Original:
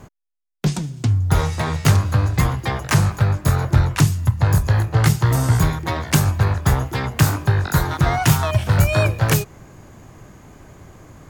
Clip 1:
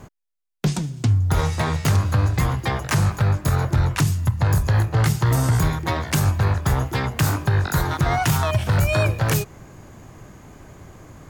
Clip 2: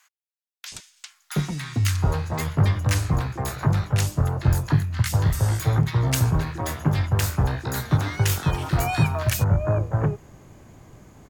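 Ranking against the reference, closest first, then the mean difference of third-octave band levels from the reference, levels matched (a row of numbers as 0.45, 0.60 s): 1, 2; 1.5, 5.5 dB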